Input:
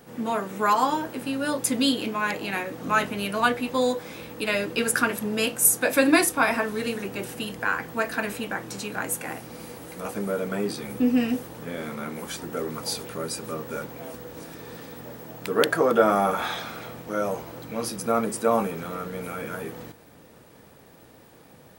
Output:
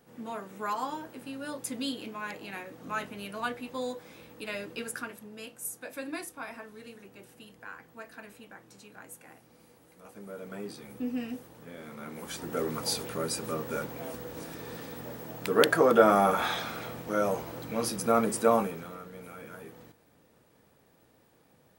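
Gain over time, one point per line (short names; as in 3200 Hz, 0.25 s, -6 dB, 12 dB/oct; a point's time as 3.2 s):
4.73 s -11.5 dB
5.3 s -19 dB
10.03 s -19 dB
10.56 s -12 dB
11.82 s -12 dB
12.6 s -1 dB
18.48 s -1 dB
19.03 s -12 dB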